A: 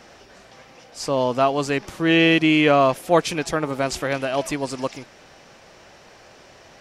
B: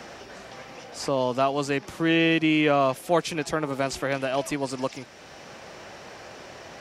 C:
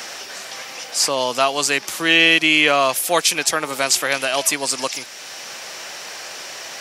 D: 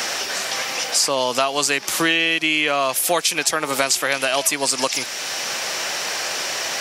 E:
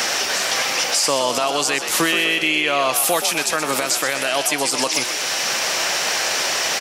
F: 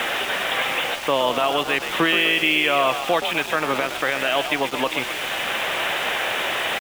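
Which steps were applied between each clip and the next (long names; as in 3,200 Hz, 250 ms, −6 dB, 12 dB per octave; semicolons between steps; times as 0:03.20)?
high-pass filter 43 Hz; multiband upward and downward compressor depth 40%; level −4 dB
spectral tilt +4.5 dB per octave; level +6.5 dB
downward compressor 6 to 1, threshold −24 dBFS, peak gain reduction 14 dB; level +8 dB
brickwall limiter −12 dBFS, peak gain reduction 9.5 dB; on a send: echo with shifted repeats 125 ms, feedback 58%, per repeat +55 Hz, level −9 dB; on the sum: level +3.5 dB
downsampling to 8,000 Hz; centre clipping without the shift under −29 dBFS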